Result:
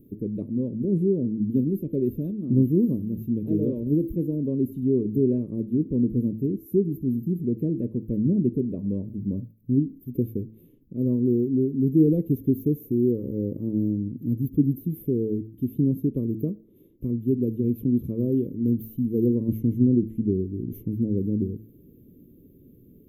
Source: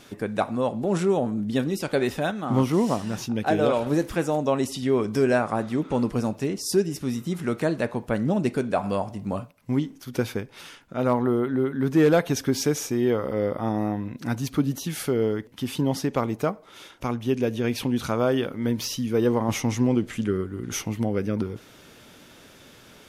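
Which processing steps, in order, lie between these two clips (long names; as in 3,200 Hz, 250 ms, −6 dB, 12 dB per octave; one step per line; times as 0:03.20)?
inverse Chebyshev band-stop filter 710–9,200 Hz, stop band 40 dB
hum removal 110.1 Hz, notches 3
level +3 dB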